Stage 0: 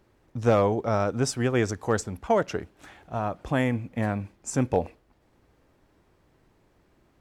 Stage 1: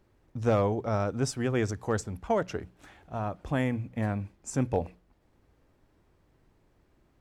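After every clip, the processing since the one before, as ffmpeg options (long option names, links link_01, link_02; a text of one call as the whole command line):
ffmpeg -i in.wav -af "lowshelf=frequency=150:gain=6.5,bandreject=frequency=60:width_type=h:width=6,bandreject=frequency=120:width_type=h:width=6,bandreject=frequency=180:width_type=h:width=6,volume=-5dB" out.wav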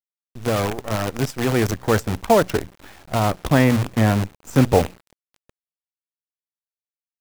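ffmpeg -i in.wav -filter_complex "[0:a]acrossover=split=4500[link_01][link_02];[link_01]dynaudnorm=framelen=200:gausssize=17:maxgain=11dB[link_03];[link_03][link_02]amix=inputs=2:normalize=0,acrusher=bits=5:dc=4:mix=0:aa=0.000001,volume=2dB" out.wav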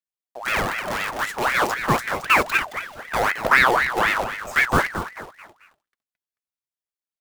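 ffmpeg -i in.wav -af "aphaser=in_gain=1:out_gain=1:delay=4.7:decay=0.51:speed=0.29:type=triangular,aecho=1:1:219|438|657|876:0.335|0.124|0.0459|0.017,aeval=exprs='val(0)*sin(2*PI*1300*n/s+1300*0.55/3.9*sin(2*PI*3.9*n/s))':channel_layout=same,volume=-1dB" out.wav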